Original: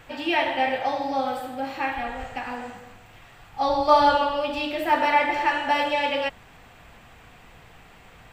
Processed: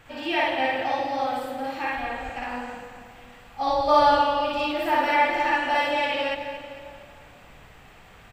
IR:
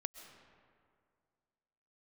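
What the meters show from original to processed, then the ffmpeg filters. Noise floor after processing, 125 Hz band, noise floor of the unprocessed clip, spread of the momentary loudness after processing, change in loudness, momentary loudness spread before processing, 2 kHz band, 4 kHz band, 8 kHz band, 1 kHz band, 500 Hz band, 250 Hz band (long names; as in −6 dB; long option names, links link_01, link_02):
−50 dBFS, −0.5 dB, −50 dBFS, 17 LU, −0.5 dB, 14 LU, +0.5 dB, −0.5 dB, can't be measured, 0.0 dB, 0.0 dB, −1.0 dB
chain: -filter_complex "[0:a]aecho=1:1:227|454|681|908|1135:0.2|0.106|0.056|0.0297|0.0157,asplit=2[link_01][link_02];[1:a]atrim=start_sample=2205,adelay=57[link_03];[link_02][link_03]afir=irnorm=-1:irlink=0,volume=3.5dB[link_04];[link_01][link_04]amix=inputs=2:normalize=0,volume=-4dB"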